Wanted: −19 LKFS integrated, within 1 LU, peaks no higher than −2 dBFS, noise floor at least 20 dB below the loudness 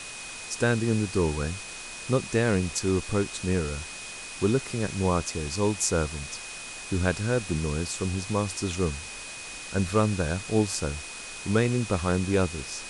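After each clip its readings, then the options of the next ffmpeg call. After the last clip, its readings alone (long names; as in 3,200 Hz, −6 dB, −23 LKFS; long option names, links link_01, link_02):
interfering tone 2,500 Hz; level of the tone −42 dBFS; background noise floor −40 dBFS; target noise floor −48 dBFS; integrated loudness −28.0 LKFS; sample peak −8.5 dBFS; target loudness −19.0 LKFS
→ -af "bandreject=frequency=2500:width=30"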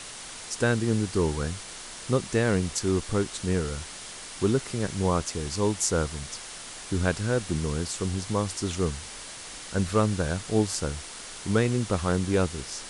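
interfering tone none found; background noise floor −41 dBFS; target noise floor −48 dBFS
→ -af "afftdn=noise_reduction=7:noise_floor=-41"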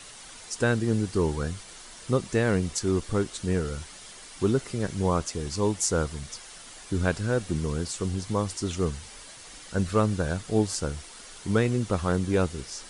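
background noise floor −46 dBFS; target noise floor −48 dBFS
→ -af "afftdn=noise_reduction=6:noise_floor=-46"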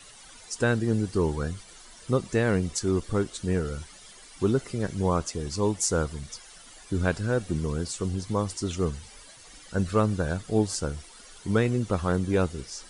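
background noise floor −50 dBFS; integrated loudness −27.5 LKFS; sample peak −9.5 dBFS; target loudness −19.0 LKFS
→ -af "volume=8.5dB,alimiter=limit=-2dB:level=0:latency=1"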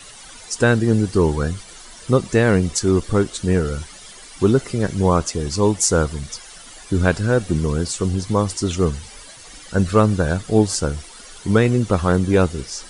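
integrated loudness −19.0 LKFS; sample peak −2.0 dBFS; background noise floor −41 dBFS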